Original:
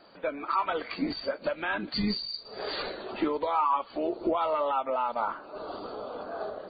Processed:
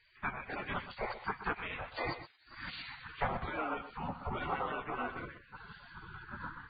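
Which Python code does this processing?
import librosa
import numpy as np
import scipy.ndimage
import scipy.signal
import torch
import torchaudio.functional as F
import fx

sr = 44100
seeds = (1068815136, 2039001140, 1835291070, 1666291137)

p1 = scipy.signal.sosfilt(scipy.signal.cheby1(2, 1.0, 1000.0, 'lowpass', fs=sr, output='sos'), x)
p2 = fx.spec_gate(p1, sr, threshold_db=-25, keep='weak')
p3 = p2 + fx.echo_single(p2, sr, ms=125, db=-12.0, dry=0)
y = p3 * librosa.db_to_amplitude(14.5)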